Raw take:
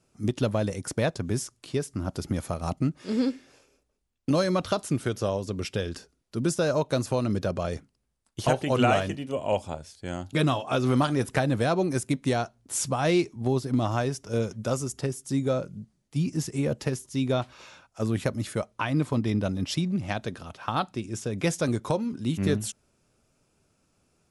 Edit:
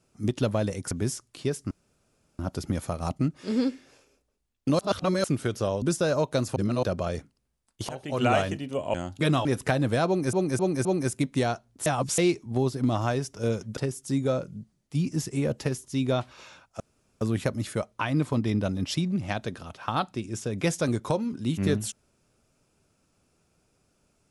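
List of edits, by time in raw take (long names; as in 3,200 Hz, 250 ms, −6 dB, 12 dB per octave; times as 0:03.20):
0:00.91–0:01.20: remove
0:02.00: splice in room tone 0.68 s
0:04.40–0:04.85: reverse
0:05.43–0:06.40: remove
0:07.14–0:07.41: reverse
0:08.47–0:08.95: fade in linear, from −19.5 dB
0:09.52–0:10.08: remove
0:10.59–0:11.13: remove
0:11.75–0:12.01: repeat, 4 plays
0:12.76–0:13.08: reverse
0:14.67–0:14.98: remove
0:18.01: splice in room tone 0.41 s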